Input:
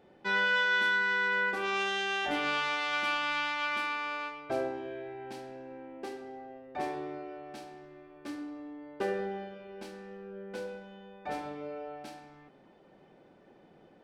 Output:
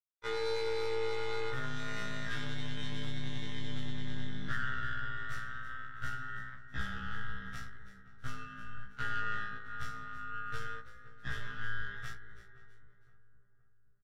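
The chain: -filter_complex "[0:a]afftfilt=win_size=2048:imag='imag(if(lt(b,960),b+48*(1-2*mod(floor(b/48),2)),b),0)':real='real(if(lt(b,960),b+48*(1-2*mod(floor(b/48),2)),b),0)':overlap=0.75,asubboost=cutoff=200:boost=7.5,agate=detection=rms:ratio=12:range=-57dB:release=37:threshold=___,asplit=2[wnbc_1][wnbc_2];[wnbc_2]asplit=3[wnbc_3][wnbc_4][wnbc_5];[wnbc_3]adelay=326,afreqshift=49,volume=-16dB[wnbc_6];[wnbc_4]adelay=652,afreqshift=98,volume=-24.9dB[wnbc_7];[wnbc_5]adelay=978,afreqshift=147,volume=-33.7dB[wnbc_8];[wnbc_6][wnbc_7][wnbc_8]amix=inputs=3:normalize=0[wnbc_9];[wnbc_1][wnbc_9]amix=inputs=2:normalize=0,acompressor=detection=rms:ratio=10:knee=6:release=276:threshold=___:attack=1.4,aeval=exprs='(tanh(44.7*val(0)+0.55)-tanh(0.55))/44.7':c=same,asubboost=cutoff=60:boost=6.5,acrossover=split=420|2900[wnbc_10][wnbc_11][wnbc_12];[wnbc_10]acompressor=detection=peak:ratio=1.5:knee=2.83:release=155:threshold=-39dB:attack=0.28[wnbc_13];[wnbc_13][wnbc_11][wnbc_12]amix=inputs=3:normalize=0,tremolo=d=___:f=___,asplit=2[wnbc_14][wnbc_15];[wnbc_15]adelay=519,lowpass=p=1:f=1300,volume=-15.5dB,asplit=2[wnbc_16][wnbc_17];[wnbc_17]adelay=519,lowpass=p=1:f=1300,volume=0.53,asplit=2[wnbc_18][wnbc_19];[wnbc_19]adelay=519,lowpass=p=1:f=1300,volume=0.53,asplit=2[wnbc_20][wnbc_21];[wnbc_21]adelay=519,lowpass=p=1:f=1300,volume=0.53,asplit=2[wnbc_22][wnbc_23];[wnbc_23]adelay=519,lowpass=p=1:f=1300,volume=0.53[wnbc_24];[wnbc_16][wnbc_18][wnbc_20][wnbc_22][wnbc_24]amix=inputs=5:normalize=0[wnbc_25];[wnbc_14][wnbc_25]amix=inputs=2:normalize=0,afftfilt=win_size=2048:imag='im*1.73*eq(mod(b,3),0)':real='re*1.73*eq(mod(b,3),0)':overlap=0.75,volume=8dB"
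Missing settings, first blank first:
-47dB, -29dB, 0.857, 110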